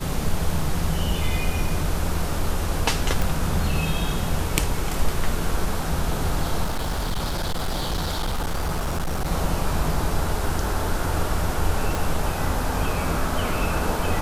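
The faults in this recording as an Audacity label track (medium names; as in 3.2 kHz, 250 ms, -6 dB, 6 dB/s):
3.220000	3.220000	pop
6.640000	9.310000	clipped -21 dBFS
10.640000	10.640000	dropout 2.5 ms
11.950000	11.950000	pop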